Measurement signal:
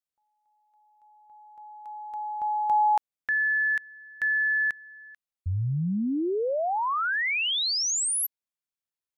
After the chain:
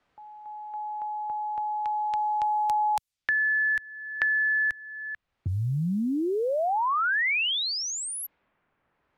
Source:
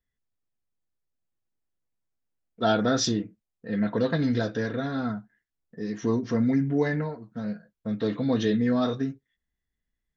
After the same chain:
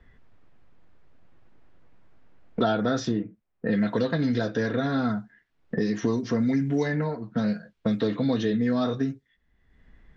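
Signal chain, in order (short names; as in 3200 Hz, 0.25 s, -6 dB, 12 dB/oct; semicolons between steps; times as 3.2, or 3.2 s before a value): low-pass opened by the level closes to 1900 Hz, open at -24.5 dBFS; three-band squash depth 100%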